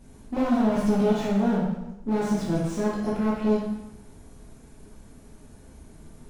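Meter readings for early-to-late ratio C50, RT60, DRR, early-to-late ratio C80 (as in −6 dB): 0.5 dB, 0.90 s, −7.0 dB, 3.5 dB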